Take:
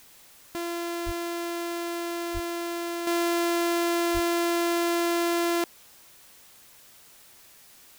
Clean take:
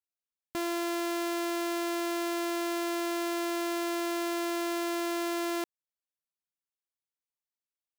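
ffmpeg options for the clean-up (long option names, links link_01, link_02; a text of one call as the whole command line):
ffmpeg -i in.wav -filter_complex "[0:a]asplit=3[link_01][link_02][link_03];[link_01]afade=type=out:start_time=1.05:duration=0.02[link_04];[link_02]highpass=frequency=140:width=0.5412,highpass=frequency=140:width=1.3066,afade=type=in:start_time=1.05:duration=0.02,afade=type=out:start_time=1.17:duration=0.02[link_05];[link_03]afade=type=in:start_time=1.17:duration=0.02[link_06];[link_04][link_05][link_06]amix=inputs=3:normalize=0,asplit=3[link_07][link_08][link_09];[link_07]afade=type=out:start_time=2.33:duration=0.02[link_10];[link_08]highpass=frequency=140:width=0.5412,highpass=frequency=140:width=1.3066,afade=type=in:start_time=2.33:duration=0.02,afade=type=out:start_time=2.45:duration=0.02[link_11];[link_09]afade=type=in:start_time=2.45:duration=0.02[link_12];[link_10][link_11][link_12]amix=inputs=3:normalize=0,asplit=3[link_13][link_14][link_15];[link_13]afade=type=out:start_time=4.13:duration=0.02[link_16];[link_14]highpass=frequency=140:width=0.5412,highpass=frequency=140:width=1.3066,afade=type=in:start_time=4.13:duration=0.02,afade=type=out:start_time=4.25:duration=0.02[link_17];[link_15]afade=type=in:start_time=4.25:duration=0.02[link_18];[link_16][link_17][link_18]amix=inputs=3:normalize=0,afwtdn=0.0022,asetnsamples=nb_out_samples=441:pad=0,asendcmd='3.07 volume volume -6.5dB',volume=0dB" out.wav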